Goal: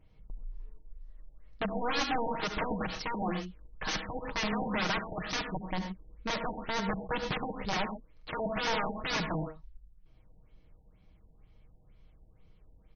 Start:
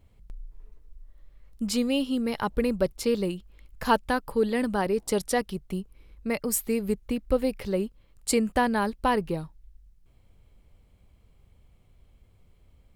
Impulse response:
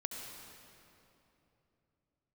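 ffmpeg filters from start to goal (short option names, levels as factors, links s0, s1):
-filter_complex "[0:a]aeval=exprs='(mod(15.8*val(0)+1,2)-1)/15.8':c=same,aecho=1:1:6.4:0.47[s0];[1:a]atrim=start_sample=2205,atrim=end_sample=6174[s1];[s0][s1]afir=irnorm=-1:irlink=0,afftfilt=real='re*lt(b*sr/1024,910*pow(6600/910,0.5+0.5*sin(2*PI*2.1*pts/sr)))':imag='im*lt(b*sr/1024,910*pow(6600/910,0.5+0.5*sin(2*PI*2.1*pts/sr)))':win_size=1024:overlap=0.75"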